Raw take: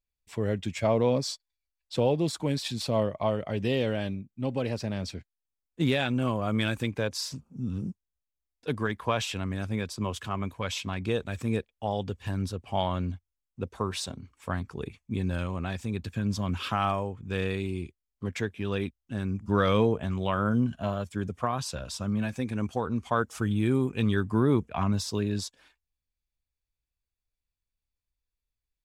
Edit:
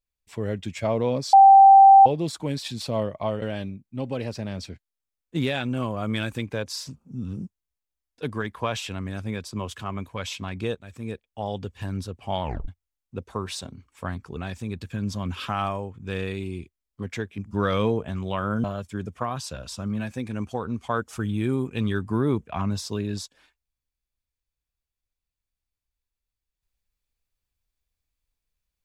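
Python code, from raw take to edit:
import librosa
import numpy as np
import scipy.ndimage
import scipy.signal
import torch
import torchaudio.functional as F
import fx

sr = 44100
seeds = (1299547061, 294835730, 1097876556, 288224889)

y = fx.edit(x, sr, fx.bleep(start_s=1.33, length_s=0.73, hz=782.0, db=-7.5),
    fx.cut(start_s=3.42, length_s=0.45),
    fx.fade_in_from(start_s=11.2, length_s=0.75, floor_db=-13.0),
    fx.tape_stop(start_s=12.88, length_s=0.25),
    fx.cut(start_s=14.82, length_s=0.78),
    fx.cut(start_s=18.61, length_s=0.72),
    fx.cut(start_s=20.59, length_s=0.27), tone=tone)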